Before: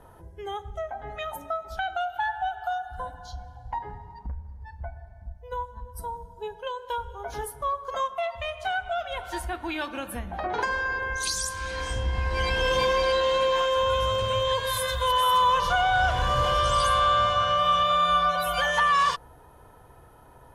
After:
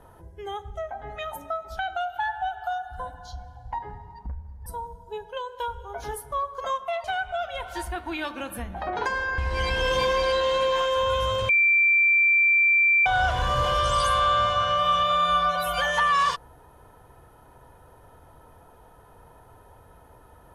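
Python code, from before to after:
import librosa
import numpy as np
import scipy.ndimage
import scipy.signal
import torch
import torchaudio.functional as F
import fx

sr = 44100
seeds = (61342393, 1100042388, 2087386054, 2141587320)

y = fx.edit(x, sr, fx.cut(start_s=4.66, length_s=1.3),
    fx.cut(start_s=8.34, length_s=0.27),
    fx.cut(start_s=10.95, length_s=1.23),
    fx.bleep(start_s=14.29, length_s=1.57, hz=2350.0, db=-16.0), tone=tone)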